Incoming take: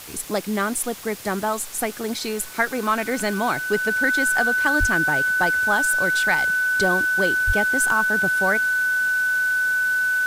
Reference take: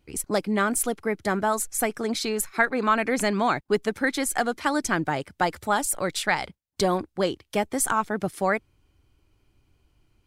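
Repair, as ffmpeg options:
-filter_complex "[0:a]adeclick=t=4,bandreject=f=1.5k:w=30,asplit=3[a][b][c];[a]afade=t=out:st=4.79:d=0.02[d];[b]highpass=f=140:w=0.5412,highpass=f=140:w=1.3066,afade=t=in:st=4.79:d=0.02,afade=t=out:st=4.91:d=0.02[e];[c]afade=t=in:st=4.91:d=0.02[f];[d][e][f]amix=inputs=3:normalize=0,asplit=3[g][h][i];[g]afade=t=out:st=7.46:d=0.02[j];[h]highpass=f=140:w=0.5412,highpass=f=140:w=1.3066,afade=t=in:st=7.46:d=0.02,afade=t=out:st=7.58:d=0.02[k];[i]afade=t=in:st=7.58:d=0.02[l];[j][k][l]amix=inputs=3:normalize=0,afftdn=nr=30:nf=-31"

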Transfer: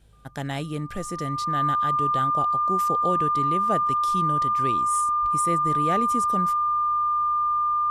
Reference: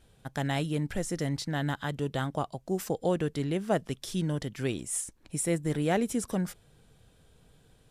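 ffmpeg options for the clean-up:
-filter_complex "[0:a]bandreject=f=52.6:t=h:w=4,bandreject=f=105.2:t=h:w=4,bandreject=f=157.8:t=h:w=4,bandreject=f=1.2k:w=30,asplit=3[a][b][c];[a]afade=t=out:st=5.21:d=0.02[d];[b]highpass=f=140:w=0.5412,highpass=f=140:w=1.3066,afade=t=in:st=5.21:d=0.02,afade=t=out:st=5.33:d=0.02[e];[c]afade=t=in:st=5.33:d=0.02[f];[d][e][f]amix=inputs=3:normalize=0"

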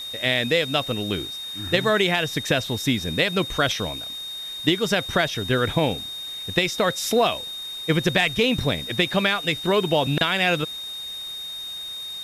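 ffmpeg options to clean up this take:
-af "bandreject=f=3.7k:w=30,afwtdn=0.0056"

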